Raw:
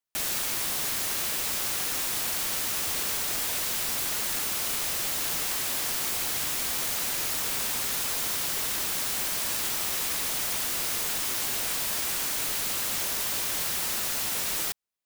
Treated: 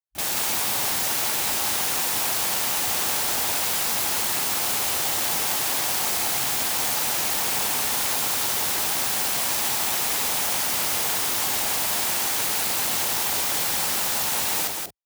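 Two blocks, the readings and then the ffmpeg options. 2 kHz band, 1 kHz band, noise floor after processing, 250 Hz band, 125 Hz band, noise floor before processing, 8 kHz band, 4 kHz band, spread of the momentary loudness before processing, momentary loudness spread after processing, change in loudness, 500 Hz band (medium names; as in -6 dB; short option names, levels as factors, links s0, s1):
+5.0 dB, +9.0 dB, -25 dBFS, +5.0 dB, +4.5 dB, -30 dBFS, +4.5 dB, +5.0 dB, 0 LU, 0 LU, +5.0 dB, +6.5 dB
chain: -af "highpass=65,afwtdn=0.0112,equalizer=f=820:t=o:w=0.53:g=7,aecho=1:1:184:0.631,volume=1.58"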